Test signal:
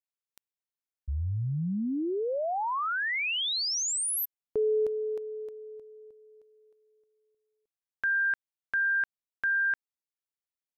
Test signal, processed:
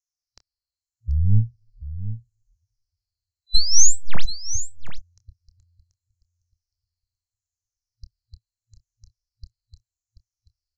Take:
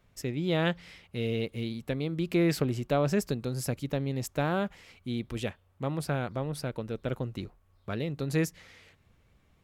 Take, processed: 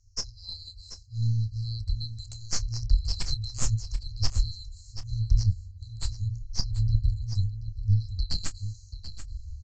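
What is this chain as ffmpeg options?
-filter_complex "[0:a]afftfilt=real='re*pow(10,16/40*sin(2*PI*(0.88*log(max(b,1)*sr/1024/100)/log(2)-(-0.78)*(pts-256)/sr)))':imag='im*pow(10,16/40*sin(2*PI*(0.88*log(max(b,1)*sr/1024/100)/log(2)-(-0.78)*(pts-256)/sr)))':win_size=1024:overlap=0.75,afftfilt=real='re*(1-between(b*sr/4096,110,4000))':imag='im*(1-between(b*sr/4096,110,4000))':win_size=4096:overlap=0.75,adynamicequalizer=threshold=0.00251:dfrequency=4000:dqfactor=2.3:tfrequency=4000:tqfactor=2.3:attack=5:release=100:ratio=0.4:range=3:mode=boostabove:tftype=bell,aeval=exprs='0.141*(cos(1*acos(clip(val(0)/0.141,-1,1)))-cos(1*PI/2))+0.0355*(cos(2*acos(clip(val(0)/0.141,-1,1)))-cos(2*PI/2))+0.01*(cos(4*acos(clip(val(0)/0.141,-1,1)))-cos(4*PI/2))+0.0251*(cos(6*acos(clip(val(0)/0.141,-1,1)))-cos(6*PI/2))':c=same,acontrast=29,asubboost=boost=6.5:cutoff=150,asplit=2[a][b];[b]adelay=27,volume=-13dB[c];[a][c]amix=inputs=2:normalize=0,aecho=1:1:734:0.251,aresample=16000,aresample=44100,volume=1.5dB"

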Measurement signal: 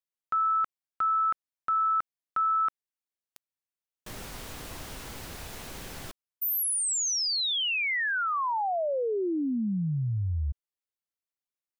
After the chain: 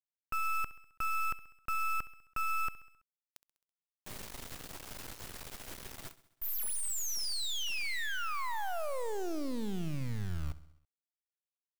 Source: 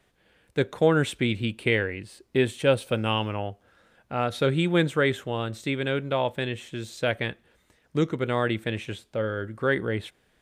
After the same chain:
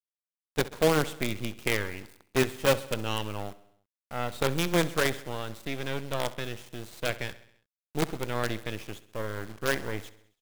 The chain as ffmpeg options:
-filter_complex "[0:a]acrusher=bits=4:dc=4:mix=0:aa=0.000001,asplit=2[a][b];[b]aecho=0:1:66|132|198|264|330:0.133|0.0787|0.0464|0.0274|0.0162[c];[a][c]amix=inputs=2:normalize=0,volume=-3.5dB"

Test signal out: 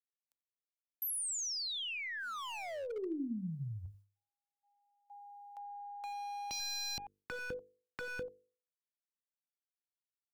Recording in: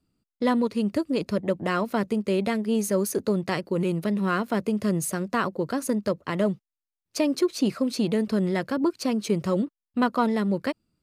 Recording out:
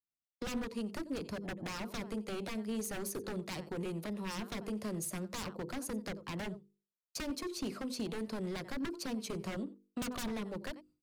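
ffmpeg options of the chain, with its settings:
-filter_complex "[0:a]agate=range=-33dB:threshold=-49dB:ratio=3:detection=peak,acrossover=split=320|1800[a][b][c];[a]acompressor=threshold=-36dB:ratio=10[d];[b]equalizer=f=870:t=o:w=1.1:g=7[e];[d][e][c]amix=inputs=3:normalize=0,aeval=exprs='0.531*(cos(1*acos(clip(val(0)/0.531,-1,1)))-cos(1*PI/2))+0.00841*(cos(2*acos(clip(val(0)/0.531,-1,1)))-cos(2*PI/2))+0.0944*(cos(3*acos(clip(val(0)/0.531,-1,1)))-cos(3*PI/2))+0.0075*(cos(4*acos(clip(val(0)/0.531,-1,1)))-cos(4*PI/2))':c=same,bandreject=f=50:t=h:w=6,bandreject=f=100:t=h:w=6,bandreject=f=150:t=h:w=6,bandreject=f=200:t=h:w=6,bandreject=f=250:t=h:w=6,bandreject=f=300:t=h:w=6,bandreject=f=350:t=h:w=6,bandreject=f=400:t=h:w=6,bandreject=f=450:t=h:w=6,bandreject=f=500:t=h:w=6,asplit=2[f][g];[g]aecho=0:1:89:0.0944[h];[f][h]amix=inputs=2:normalize=0,aeval=exprs='0.0335*(abs(mod(val(0)/0.0335+3,4)-2)-1)':c=same,acrossover=split=300[i][j];[j]acompressor=threshold=-59dB:ratio=2[k];[i][k]amix=inputs=2:normalize=0,highshelf=f=2.3k:g=7,volume=3.5dB"

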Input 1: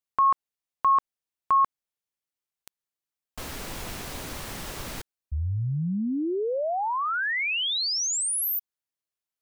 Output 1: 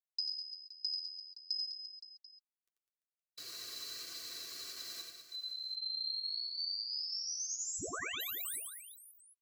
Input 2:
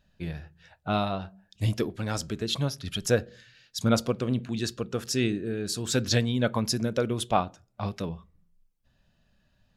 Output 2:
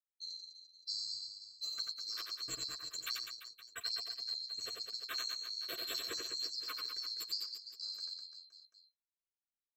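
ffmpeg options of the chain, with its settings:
-af "afftfilt=real='real(if(lt(b,736),b+184*(1-2*mod(floor(b/184),2)),b),0)':imag='imag(if(lt(b,736),b+184*(1-2*mod(floor(b/184),2)),b),0)':win_size=2048:overlap=0.75,anlmdn=1.58,highpass=f=160:p=1,aecho=1:1:2.6:0.51,acompressor=threshold=-27dB:ratio=12:attack=40:release=873:knee=1:detection=peak,flanger=delay=5.9:depth=5:regen=-20:speed=1.2:shape=sinusoidal,asuperstop=centerf=860:order=20:qfactor=2.7,aecho=1:1:90|202.5|343.1|518.9|738.6:0.631|0.398|0.251|0.158|0.1,volume=-8.5dB"

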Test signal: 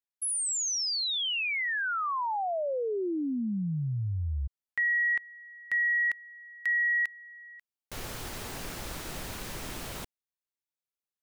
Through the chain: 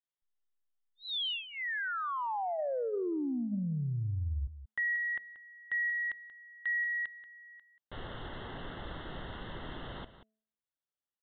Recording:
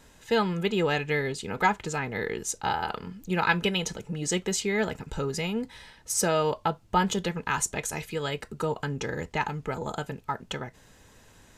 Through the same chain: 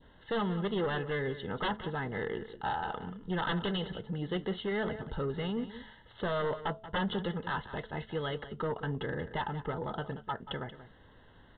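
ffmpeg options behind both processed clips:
-af "bandreject=f=217.8:t=h:w=4,bandreject=f=435.6:t=h:w=4,bandreject=f=653.4:t=h:w=4,adynamicequalizer=threshold=0.0126:dfrequency=1400:dqfactor=1.1:tfrequency=1400:tqfactor=1.1:attack=5:release=100:ratio=0.375:range=1.5:mode=cutabove:tftype=bell,aeval=exprs='0.376*(cos(1*acos(clip(val(0)/0.376,-1,1)))-cos(1*PI/2))+0.188*(cos(3*acos(clip(val(0)/0.376,-1,1)))-cos(3*PI/2))+0.00531*(cos(4*acos(clip(val(0)/0.376,-1,1)))-cos(4*PI/2))+0.0841*(cos(7*acos(clip(val(0)/0.376,-1,1)))-cos(7*PI/2))':c=same,asuperstop=centerf=2400:order=4:qfactor=3.2,aecho=1:1:183:0.211,aresample=8000,aresample=44100,volume=-8.5dB"

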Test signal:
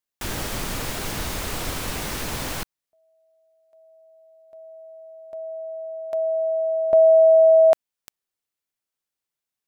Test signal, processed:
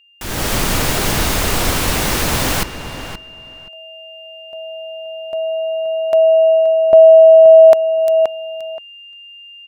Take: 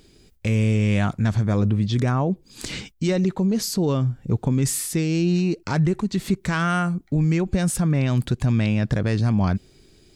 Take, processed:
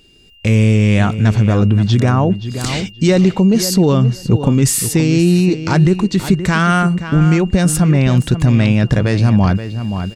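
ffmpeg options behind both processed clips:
-filter_complex "[0:a]aeval=exprs='val(0)+0.00316*sin(2*PI*2800*n/s)':c=same,asplit=2[a][b];[b]adelay=525,lowpass=f=3.4k:p=1,volume=-10.5dB,asplit=2[c][d];[d]adelay=525,lowpass=f=3.4k:p=1,volume=0.17[e];[a][c][e]amix=inputs=3:normalize=0,dynaudnorm=f=250:g=3:m=12.5dB"

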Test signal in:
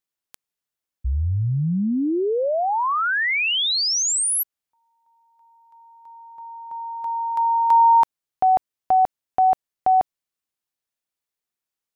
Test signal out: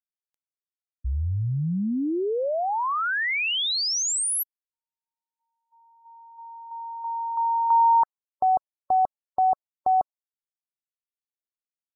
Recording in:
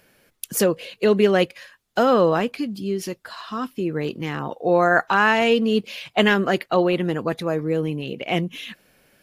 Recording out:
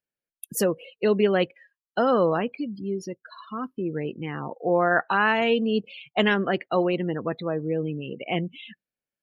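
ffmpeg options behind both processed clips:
-af "afftdn=nr=33:nf=-32,volume=-4dB"

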